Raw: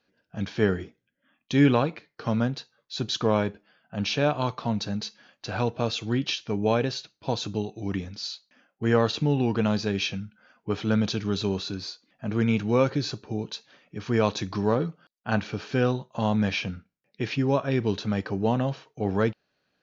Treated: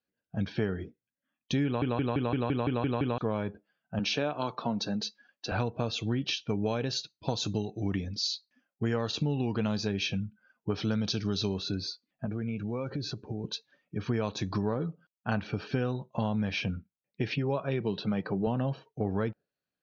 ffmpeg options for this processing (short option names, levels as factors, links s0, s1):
-filter_complex "[0:a]asettb=1/sr,asplit=3[s0][s1][s2];[s0]atrim=end=3.994[s3];[s1]atrim=start=3.99:end=5.52,asetpts=PTS-STARTPTS,afade=t=in:d=0.004:c=qsin,afade=t=out:st=1.526:d=0.004:c=qsin,highpass=210[s4];[s2]atrim=start=5.516[s5];[s3][s4]acrossfade=d=0.004:c1=hsin:c2=qsin[s6];[s6][s5]acrossfade=d=0.004:c1=qsin:c2=hsin,asettb=1/sr,asplit=3[s7][s8][s9];[s7]atrim=end=6.494[s10];[s8]atrim=start=6.49:end=9.87,asetpts=PTS-STARTPTS,afade=t=in:d=0.004:c=qsin,afade=t=out:st=3.376:d=0.004:c=qsin,highshelf=f=4100:g=7.5[s11];[s9]atrim=start=9.866[s12];[s10][s11]acrossfade=d=0.004:c1=hsin:c2=qsin[s13];[s13][s12]acrossfade=d=0.004:c1=qsin:c2=hsin,asettb=1/sr,asplit=3[s14][s15][s16];[s14]atrim=end=10.754[s17];[s15]atrim=start=10.75:end=11.54,asetpts=PTS-STARTPTS,afade=t=in:d=0.004:c=qsin,afade=t=out:st=0.786:d=0.004:c=qsin,lowpass=f=5400:t=q:w=2.5[s18];[s16]atrim=start=11.536[s19];[s17][s18]acrossfade=d=0.004:c1=hsin:c2=qsin[s20];[s20][s19]acrossfade=d=0.004:c1=qsin:c2=hsin,asettb=1/sr,asplit=3[s21][s22][s23];[s21]atrim=end=12.254[s24];[s22]atrim=start=12.25:end=13.44,asetpts=PTS-STARTPTS,afade=t=in:d=0.004:c=qsin,afade=t=out:st=1.186:d=0.004:c=qsin,acompressor=threshold=0.0224:ratio=4:attack=3.2:release=140:knee=1:detection=peak[s25];[s23]atrim=start=13.436[s26];[s24][s25]acrossfade=d=0.004:c1=hsin:c2=qsin[s27];[s27][s26]acrossfade=d=0.004:c1=qsin:c2=hsin,asettb=1/sr,asplit=3[s28][s29][s30];[s28]atrim=end=17.344[s31];[s29]atrim=start=17.34:end=18.47,asetpts=PTS-STARTPTS,afade=t=in:d=0.004:c=qsin,afade=t=out:st=1.126:d=0.004:c=qsin,highpass=160,equalizer=f=170:t=q:w=4:g=7,equalizer=f=260:t=q:w=4:g=-7,equalizer=f=1700:t=q:w=4:g=-3,lowpass=f=5200:w=0.5412,lowpass=f=5200:w=1.3066[s32];[s30]atrim=start=18.466[s33];[s31][s32]acrossfade=d=0.004:c1=hsin:c2=qsin[s34];[s34][s33]acrossfade=d=0.004:c1=qsin:c2=hsin,asplit=10[s35][s36][s37][s38][s39][s40][s41][s42][s43][s44];[s35]atrim=end=1.822[s45];[s36]atrim=start=1.648:end=1.822[s46];[s37]atrim=start=1.648:end=1.822[s47];[s38]atrim=start=1.648:end=1.822[s48];[s39]atrim=start=1.648:end=1.822[s49];[s40]atrim=start=1.648:end=1.822[s50];[s41]atrim=start=1.648:end=1.822[s51];[s42]atrim=start=1.648:end=1.822[s52];[s43]atrim=start=1.648:end=1.822[s53];[s44]atrim=start=3.178[s54];[s45][s46]acrossfade=d=0.004:c1=hsin:c2=hsin[s55];[s55][s47]acrossfade=d=0.004:c1=hsin:c2=hsin[s56];[s56][s48]acrossfade=d=0.004:c1=hsin:c2=hsin[s57];[s57][s49]acrossfade=d=0.004:c1=hsin:c2=hsin[s58];[s58][s50]acrossfade=d=0.004:c1=hsin:c2=hsin[s59];[s59][s51]acrossfade=d=0.004:c1=hsin:c2=hsin[s60];[s60][s52]acrossfade=d=0.004:c1=hsin:c2=hsin[s61];[s61][s53]acrossfade=d=0.004:c1=hsin:c2=hsin[s62];[s62][s54]acrossfade=d=0.004:c1=hsin:c2=hsin,lowshelf=f=220:g=4,afftdn=nr=18:nf=-46,acompressor=threshold=0.0501:ratio=6"